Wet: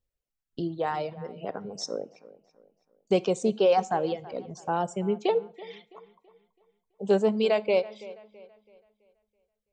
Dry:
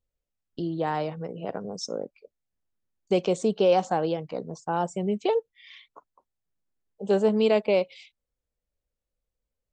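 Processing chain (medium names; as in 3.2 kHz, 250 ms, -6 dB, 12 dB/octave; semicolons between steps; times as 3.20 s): reverb removal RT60 1.5 s; feedback echo behind a low-pass 330 ms, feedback 39%, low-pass 3.2 kHz, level -18.5 dB; on a send at -15.5 dB: reverberation RT60 0.55 s, pre-delay 3 ms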